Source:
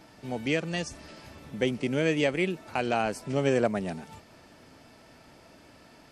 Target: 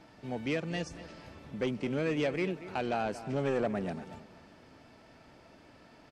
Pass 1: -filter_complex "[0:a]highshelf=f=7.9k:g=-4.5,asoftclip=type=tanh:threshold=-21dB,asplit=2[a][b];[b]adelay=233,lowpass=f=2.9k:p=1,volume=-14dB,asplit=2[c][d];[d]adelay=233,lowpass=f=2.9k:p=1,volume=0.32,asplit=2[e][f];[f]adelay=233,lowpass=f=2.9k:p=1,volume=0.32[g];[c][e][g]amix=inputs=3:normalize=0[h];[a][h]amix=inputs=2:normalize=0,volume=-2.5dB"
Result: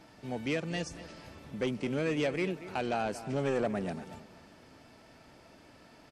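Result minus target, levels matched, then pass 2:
8000 Hz band +4.0 dB
-filter_complex "[0:a]highshelf=f=7.9k:g=-15.5,asoftclip=type=tanh:threshold=-21dB,asplit=2[a][b];[b]adelay=233,lowpass=f=2.9k:p=1,volume=-14dB,asplit=2[c][d];[d]adelay=233,lowpass=f=2.9k:p=1,volume=0.32,asplit=2[e][f];[f]adelay=233,lowpass=f=2.9k:p=1,volume=0.32[g];[c][e][g]amix=inputs=3:normalize=0[h];[a][h]amix=inputs=2:normalize=0,volume=-2.5dB"

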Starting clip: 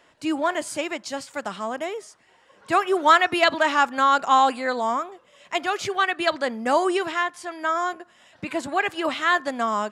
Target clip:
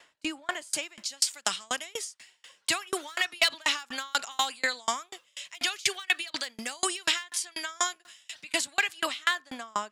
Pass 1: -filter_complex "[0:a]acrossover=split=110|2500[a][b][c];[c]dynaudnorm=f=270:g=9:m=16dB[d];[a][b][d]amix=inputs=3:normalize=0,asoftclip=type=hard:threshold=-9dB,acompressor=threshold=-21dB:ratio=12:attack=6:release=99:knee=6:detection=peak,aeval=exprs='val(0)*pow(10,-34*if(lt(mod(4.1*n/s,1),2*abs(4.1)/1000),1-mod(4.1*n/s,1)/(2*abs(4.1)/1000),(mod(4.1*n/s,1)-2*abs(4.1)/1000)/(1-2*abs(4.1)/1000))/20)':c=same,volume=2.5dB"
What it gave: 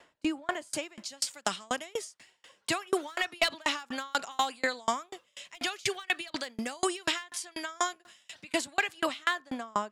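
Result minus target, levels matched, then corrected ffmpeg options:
1000 Hz band +3.5 dB
-filter_complex "[0:a]acrossover=split=110|2500[a][b][c];[c]dynaudnorm=f=270:g=9:m=16dB[d];[a][b][d]amix=inputs=3:normalize=0,asoftclip=type=hard:threshold=-9dB,acompressor=threshold=-21dB:ratio=12:attack=6:release=99:knee=6:detection=peak,tiltshelf=f=1.1k:g=-6.5,aeval=exprs='val(0)*pow(10,-34*if(lt(mod(4.1*n/s,1),2*abs(4.1)/1000),1-mod(4.1*n/s,1)/(2*abs(4.1)/1000),(mod(4.1*n/s,1)-2*abs(4.1)/1000)/(1-2*abs(4.1)/1000))/20)':c=same,volume=2.5dB"

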